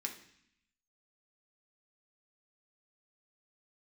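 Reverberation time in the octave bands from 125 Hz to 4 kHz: 0.95, 0.95, 0.60, 0.70, 0.90, 0.85 seconds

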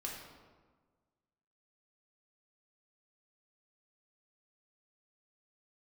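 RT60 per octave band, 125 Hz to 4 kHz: 1.7, 1.6, 1.5, 1.4, 1.1, 0.85 seconds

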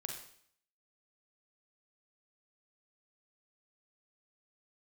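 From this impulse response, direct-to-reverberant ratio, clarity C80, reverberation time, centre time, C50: 1.5 dB, 8.0 dB, 0.60 s, 32 ms, 4.5 dB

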